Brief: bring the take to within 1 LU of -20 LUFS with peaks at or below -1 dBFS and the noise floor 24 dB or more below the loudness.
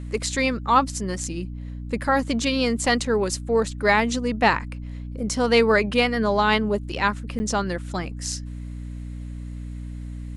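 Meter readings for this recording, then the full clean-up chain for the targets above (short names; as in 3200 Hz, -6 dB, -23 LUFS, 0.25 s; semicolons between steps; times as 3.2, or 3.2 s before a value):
dropouts 1; longest dropout 10 ms; hum 60 Hz; harmonics up to 300 Hz; hum level -31 dBFS; loudness -22.5 LUFS; peak -5.5 dBFS; loudness target -20.0 LUFS
-> interpolate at 7.39, 10 ms; de-hum 60 Hz, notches 5; gain +2.5 dB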